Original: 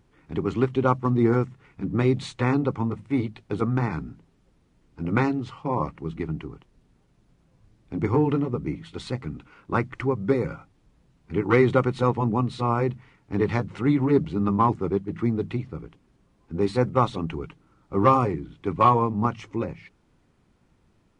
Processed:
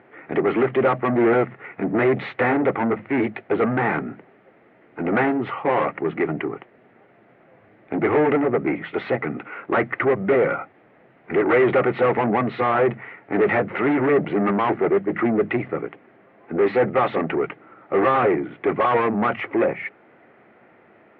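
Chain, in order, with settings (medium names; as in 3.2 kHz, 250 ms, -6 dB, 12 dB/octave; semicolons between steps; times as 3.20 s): overdrive pedal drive 32 dB, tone 1.1 kHz, clips at -5 dBFS; cabinet simulation 170–2500 Hz, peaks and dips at 170 Hz -7 dB, 270 Hz -5 dB, 670 Hz +4 dB, 1 kHz -8 dB, 2 kHz +6 dB; trim -2.5 dB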